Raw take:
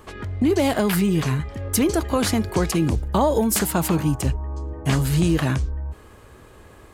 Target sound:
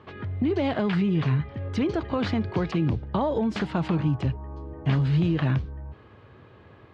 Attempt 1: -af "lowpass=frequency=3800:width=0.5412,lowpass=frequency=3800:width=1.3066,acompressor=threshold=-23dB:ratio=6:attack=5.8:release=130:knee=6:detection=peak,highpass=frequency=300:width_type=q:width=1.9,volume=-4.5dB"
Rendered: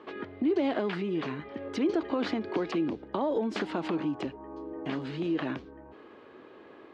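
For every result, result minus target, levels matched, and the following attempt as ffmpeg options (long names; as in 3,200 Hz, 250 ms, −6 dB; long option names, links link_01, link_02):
125 Hz band −13.0 dB; downward compressor: peak gain reduction +6 dB
-af "lowpass=frequency=3800:width=0.5412,lowpass=frequency=3800:width=1.3066,acompressor=threshold=-23dB:ratio=6:attack=5.8:release=130:knee=6:detection=peak,highpass=frequency=110:width_type=q:width=1.9,volume=-4.5dB"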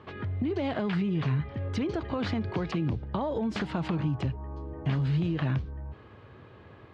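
downward compressor: peak gain reduction +6 dB
-af "lowpass=frequency=3800:width=0.5412,lowpass=frequency=3800:width=1.3066,acompressor=threshold=-15dB:ratio=6:attack=5.8:release=130:knee=6:detection=peak,highpass=frequency=110:width_type=q:width=1.9,volume=-4.5dB"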